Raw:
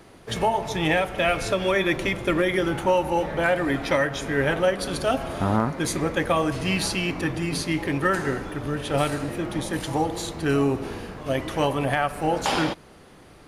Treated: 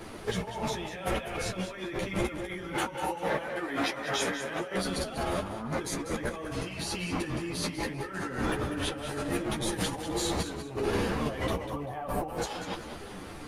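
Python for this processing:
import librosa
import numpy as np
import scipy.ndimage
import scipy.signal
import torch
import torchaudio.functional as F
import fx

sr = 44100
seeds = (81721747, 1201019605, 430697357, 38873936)

y = fx.highpass(x, sr, hz=400.0, slope=6, at=(2.73, 4.75), fade=0.02)
y = fx.spec_box(y, sr, start_s=11.49, length_s=0.79, low_hz=1200.0, high_hz=12000.0, gain_db=-10)
y = fx.over_compress(y, sr, threshold_db=-34.0, ratio=-1.0)
y = fx.doubler(y, sr, ms=17.0, db=-11.5)
y = fx.echo_feedback(y, sr, ms=195, feedback_pct=30, wet_db=-10.0)
y = fx.ensemble(y, sr)
y = F.gain(torch.from_numpy(y), 2.0).numpy()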